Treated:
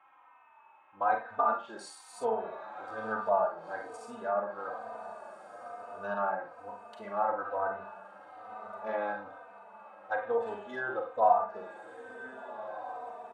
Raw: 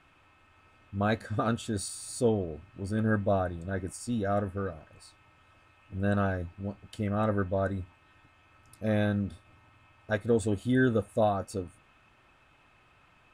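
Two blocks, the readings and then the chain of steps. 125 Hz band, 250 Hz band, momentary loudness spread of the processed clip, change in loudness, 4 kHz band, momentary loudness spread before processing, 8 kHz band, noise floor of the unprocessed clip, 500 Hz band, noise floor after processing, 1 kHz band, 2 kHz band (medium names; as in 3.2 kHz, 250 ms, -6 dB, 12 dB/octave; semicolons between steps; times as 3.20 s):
under -25 dB, -17.5 dB, 18 LU, -3.0 dB, under -10 dB, 12 LU, under -10 dB, -62 dBFS, -2.5 dB, -59 dBFS, +6.0 dB, -2.0 dB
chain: local Wiener filter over 9 samples; resonant high-pass 890 Hz, resonance Q 4.3; tilt EQ -2.5 dB/octave; echo that smears into a reverb 1523 ms, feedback 43%, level -12 dB; Schroeder reverb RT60 0.34 s, combs from 32 ms, DRR 3 dB; low-pass that closes with the level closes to 1.7 kHz, closed at -24 dBFS; endless flanger 3.2 ms -1.1 Hz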